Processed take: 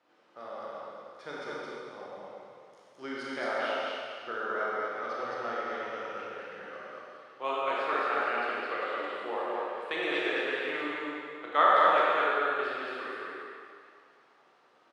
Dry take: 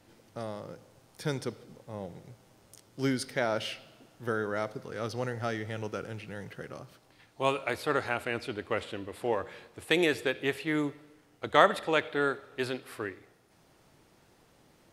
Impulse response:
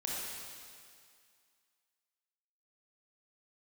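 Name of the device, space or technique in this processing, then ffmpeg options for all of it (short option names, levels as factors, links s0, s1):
station announcement: -filter_complex "[0:a]highpass=440,lowpass=3500,equalizer=f=1200:t=o:w=0.33:g=9,aecho=1:1:96.21|215.7:0.316|0.794[s0];[1:a]atrim=start_sample=2205[s1];[s0][s1]afir=irnorm=-1:irlink=0,volume=0.562"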